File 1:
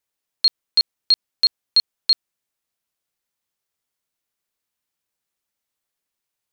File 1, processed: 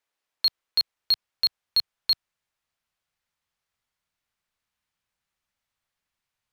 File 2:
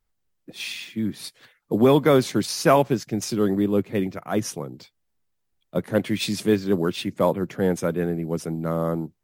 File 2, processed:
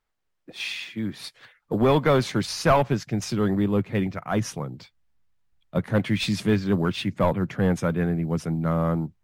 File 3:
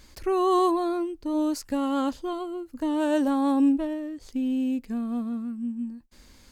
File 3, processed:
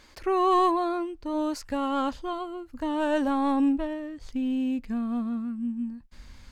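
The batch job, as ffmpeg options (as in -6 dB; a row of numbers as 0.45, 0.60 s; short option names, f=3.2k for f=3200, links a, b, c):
-filter_complex "[0:a]asplit=2[a][b];[b]highpass=f=720:p=1,volume=13dB,asoftclip=type=tanh:threshold=-5.5dB[c];[a][c]amix=inputs=2:normalize=0,lowpass=f=2.2k:p=1,volume=-6dB,asubboost=boost=7.5:cutoff=140,volume=-2.5dB"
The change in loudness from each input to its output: -6.0, -1.5, -1.0 LU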